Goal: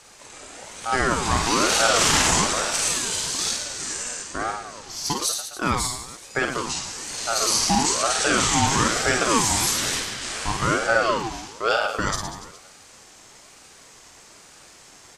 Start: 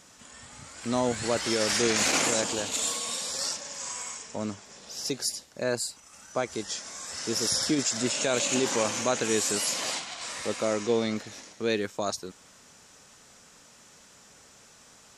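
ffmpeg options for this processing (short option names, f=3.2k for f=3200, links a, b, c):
-filter_complex "[0:a]asettb=1/sr,asplit=3[a][b][c];[a]atrim=end=2.274[d];[b]atrim=start=2.27:end=3.73,asetpts=PTS-STARTPTS,afade=t=in:d=0.004:c=qsin,afade=t=out:st=1.456:d=0.004:c=qsin,afreqshift=-110[e];[c]atrim=start=3.726[f];[d][e]acrossfade=d=0.004:c1=hsin:c2=qsin[g];[g][f]acrossfade=d=0.004:c1=qsin:c2=hsin,aecho=1:1:50|112.5|190.6|288.3|410.4:0.631|0.398|0.251|0.158|0.1,aeval=exprs='val(0)*sin(2*PI*770*n/s+770*0.35/1.1*sin(2*PI*1.1*n/s))':c=same,volume=7dB"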